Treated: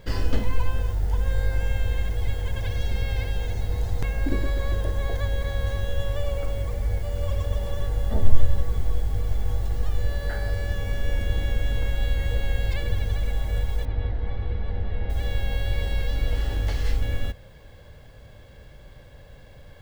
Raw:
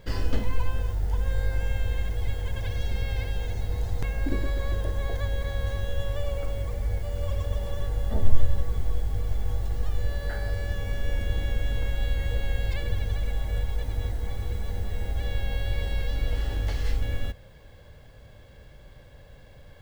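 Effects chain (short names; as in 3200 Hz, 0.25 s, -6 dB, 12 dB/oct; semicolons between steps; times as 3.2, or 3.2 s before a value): 13.85–15.1 Bessel low-pass 2700 Hz, order 6; gain +2.5 dB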